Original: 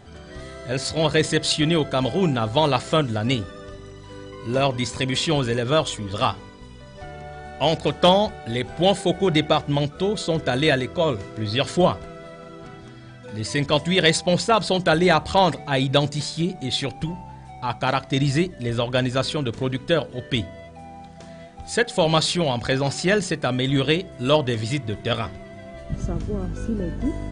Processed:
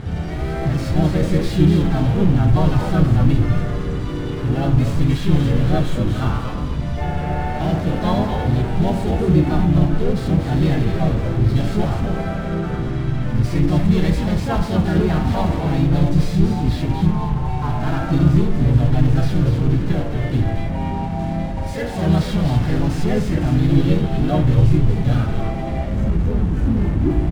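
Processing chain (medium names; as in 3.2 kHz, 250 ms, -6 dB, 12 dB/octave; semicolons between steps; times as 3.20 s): de-hum 96.01 Hz, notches 18; in parallel at -5 dB: fuzz box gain 44 dB, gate -49 dBFS; on the sum: FDN reverb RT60 0.94 s, low-frequency decay 0.75×, high-frequency decay 0.55×, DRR 10.5 dB; harmonic-percussive split percussive -12 dB; bass shelf 370 Hz +5.5 dB; comb of notches 510 Hz; on a send: frequency-shifting echo 242 ms, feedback 39%, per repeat -130 Hz, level -6 dB; on the sum: harmony voices -12 st -8 dB, +3 st -2 dB; tone controls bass +7 dB, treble -8 dB; trim -10.5 dB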